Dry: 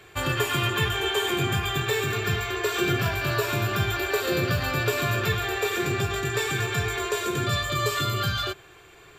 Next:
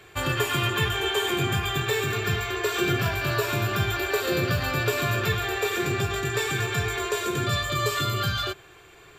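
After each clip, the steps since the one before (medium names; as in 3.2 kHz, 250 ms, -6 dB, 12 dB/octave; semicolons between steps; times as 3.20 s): no audible change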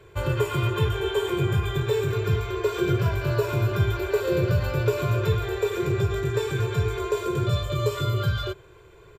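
tilt shelf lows +6.5 dB; comb 2 ms, depth 72%; trim -4 dB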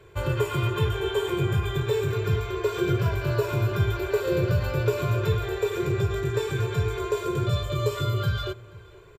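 echo from a far wall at 82 m, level -21 dB; trim -1 dB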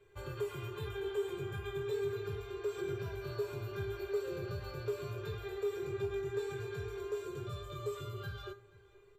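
feedback comb 400 Hz, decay 0.22 s, harmonics all, mix 90%; in parallel at -5.5 dB: saturation -32 dBFS, distortion -13 dB; on the sum: trim -4.5 dB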